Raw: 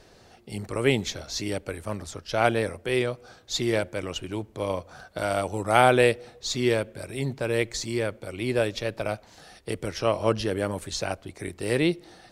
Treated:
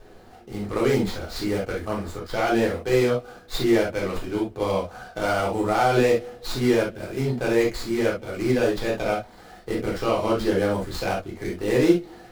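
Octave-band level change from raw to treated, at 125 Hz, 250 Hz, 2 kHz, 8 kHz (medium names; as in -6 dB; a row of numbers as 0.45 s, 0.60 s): +1.5 dB, +6.0 dB, +0.5 dB, -3.5 dB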